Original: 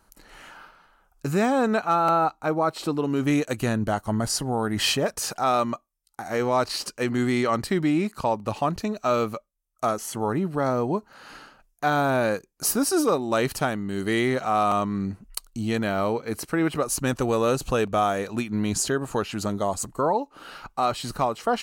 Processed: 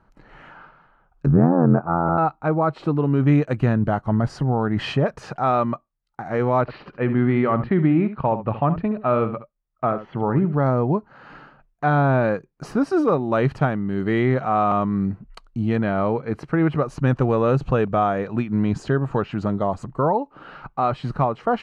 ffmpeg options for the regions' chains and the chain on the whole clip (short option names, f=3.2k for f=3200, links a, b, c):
-filter_complex "[0:a]asettb=1/sr,asplit=3[a][b][c];[a]atrim=end=1.264[d];[b]atrim=start=1.26:end=2.18,asetpts=PTS-STARTPTS,afade=t=in:d=0.004:c=qsin,afade=t=out:st=0.916:d=0.004:c=qsin,lowpass=f=1.4k:w=0.5412,lowpass=f=1.4k:w=1.3066,equalizer=f=210:w=0.75:g=7.5,tremolo=f=86:d=0.919[e];[c]atrim=start=2.176[f];[d][e]acrossfade=d=0.004:c1=hsin:c2=qsin[g];[g][f]acrossfade=d=0.004:c1=qsin:c2=hsin,asettb=1/sr,asplit=3[h][i][j];[h]atrim=end=6.614[k];[i]atrim=start=6.61:end=10.53,asetpts=PTS-STARTPTS,afade=t=in:d=0.004:c=qsin,afade=t=out:st=3.916:d=0.004:c=qsin,lowpass=f=3.3k:w=0.5412,lowpass=f=3.3k:w=1.3066,aecho=1:1:70:0.251,atrim=end_sample=172872[l];[j]atrim=start=10.526[m];[k][l]acrossfade=d=0.004:c1=hsin:c2=qsin[n];[n][m]acrossfade=d=0.004:c1=qsin:c2=hsin,lowpass=1.9k,equalizer=f=140:w=2.1:g=9.5,volume=2.5dB"